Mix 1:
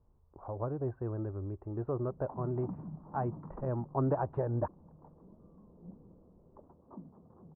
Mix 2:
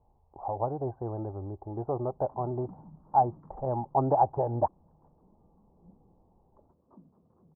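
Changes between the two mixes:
speech: add low-pass with resonance 810 Hz, resonance Q 6.4
background −7.0 dB

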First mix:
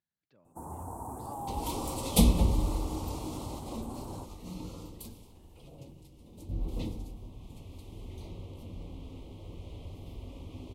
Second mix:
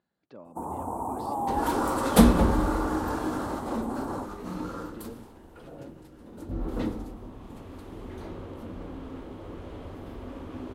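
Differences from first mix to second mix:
speech +10.0 dB
second sound: remove Butterworth band-reject 1,600 Hz, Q 1.1
master: add flat-topped bell 520 Hz +9.5 dB 3 octaves

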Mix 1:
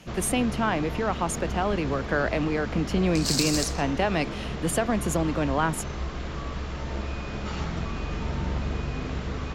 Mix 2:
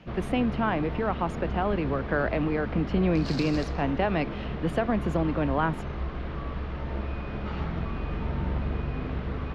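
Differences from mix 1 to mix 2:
speech: add high-shelf EQ 8,100 Hz +6.5 dB
master: add high-frequency loss of the air 330 metres

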